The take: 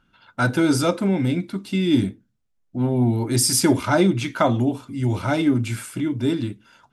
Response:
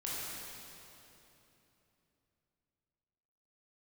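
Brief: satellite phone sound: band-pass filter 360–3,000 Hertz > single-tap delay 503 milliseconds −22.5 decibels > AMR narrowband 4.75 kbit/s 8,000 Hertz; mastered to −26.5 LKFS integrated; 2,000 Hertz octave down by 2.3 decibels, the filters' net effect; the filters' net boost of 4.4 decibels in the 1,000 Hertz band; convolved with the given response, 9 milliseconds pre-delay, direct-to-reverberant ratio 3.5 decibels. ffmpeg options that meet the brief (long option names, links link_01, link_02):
-filter_complex "[0:a]equalizer=frequency=1000:width_type=o:gain=8.5,equalizer=frequency=2000:width_type=o:gain=-8,asplit=2[link_01][link_02];[1:a]atrim=start_sample=2205,adelay=9[link_03];[link_02][link_03]afir=irnorm=-1:irlink=0,volume=-6.5dB[link_04];[link_01][link_04]amix=inputs=2:normalize=0,highpass=360,lowpass=3000,aecho=1:1:503:0.075,volume=-1dB" -ar 8000 -c:a libopencore_amrnb -b:a 4750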